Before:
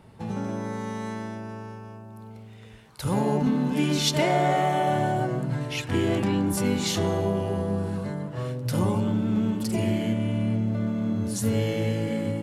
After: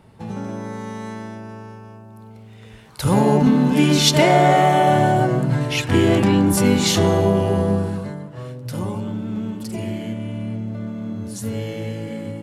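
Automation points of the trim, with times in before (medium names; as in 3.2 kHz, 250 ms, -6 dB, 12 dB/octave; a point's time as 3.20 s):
2.37 s +1.5 dB
3.05 s +8.5 dB
7.70 s +8.5 dB
8.29 s -2 dB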